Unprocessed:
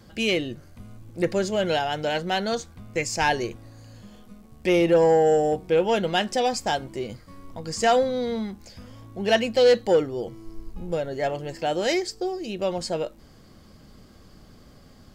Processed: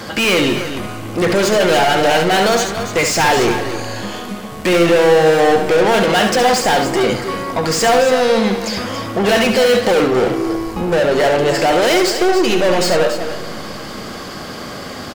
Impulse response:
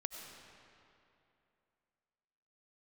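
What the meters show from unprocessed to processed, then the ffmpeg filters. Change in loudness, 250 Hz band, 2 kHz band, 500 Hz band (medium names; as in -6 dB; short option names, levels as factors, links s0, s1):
+9.5 dB, +11.0 dB, +13.0 dB, +9.5 dB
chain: -filter_complex "[0:a]asplit=2[s0][s1];[s1]highpass=f=720:p=1,volume=44.7,asoftclip=type=tanh:threshold=0.299[s2];[s0][s2]amix=inputs=2:normalize=0,lowpass=f=7600:p=1,volume=0.501,aecho=1:1:69.97|282.8:0.447|0.316,asplit=2[s3][s4];[1:a]atrim=start_sample=2205,lowpass=3300[s5];[s4][s5]afir=irnorm=-1:irlink=0,volume=0.531[s6];[s3][s6]amix=inputs=2:normalize=0"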